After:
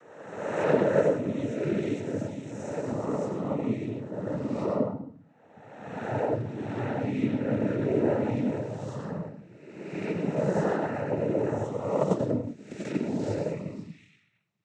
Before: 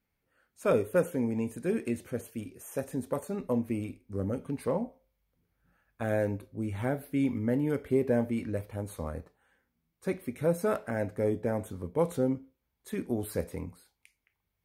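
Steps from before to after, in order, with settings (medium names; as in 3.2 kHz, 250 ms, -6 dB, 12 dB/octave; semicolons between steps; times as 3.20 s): reverse spectral sustain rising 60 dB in 1.38 s; on a send at -2.5 dB: reverberation RT60 0.55 s, pre-delay 76 ms; 11.98–13.01 s: on the sum: transient shaper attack +10 dB, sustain -5 dB; noise-vocoded speech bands 12; trim -3.5 dB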